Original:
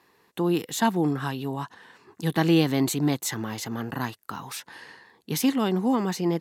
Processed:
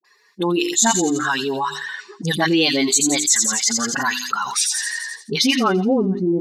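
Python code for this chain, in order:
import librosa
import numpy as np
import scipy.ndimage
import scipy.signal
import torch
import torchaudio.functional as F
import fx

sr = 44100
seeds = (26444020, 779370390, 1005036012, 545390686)

p1 = fx.bin_expand(x, sr, power=2.0)
p2 = scipy.signal.sosfilt(scipy.signal.butter(6, 190.0, 'highpass', fs=sr, output='sos'), p1)
p3 = fx.high_shelf(p2, sr, hz=5300.0, db=4.5)
p4 = fx.hum_notches(p3, sr, base_hz=50, count=8)
p5 = fx.rider(p4, sr, range_db=5, speed_s=2.0)
p6 = p4 + (p5 * 10.0 ** (1.5 / 20.0))
p7 = fx.tilt_shelf(p6, sr, db=-3.5, hz=1200.0)
p8 = np.clip(p7, -10.0 ** (-5.5 / 20.0), 10.0 ** (-5.5 / 20.0))
p9 = fx.dispersion(p8, sr, late='highs', ms=47.0, hz=590.0)
p10 = fx.filter_sweep_lowpass(p9, sr, from_hz=7000.0, to_hz=280.0, start_s=5.28, end_s=6.08, q=2.8)
p11 = p10 + fx.echo_wet_highpass(p10, sr, ms=85, feedback_pct=41, hz=4800.0, wet_db=-7, dry=0)
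p12 = fx.env_flatten(p11, sr, amount_pct=70)
y = p12 * 10.0 ** (-4.5 / 20.0)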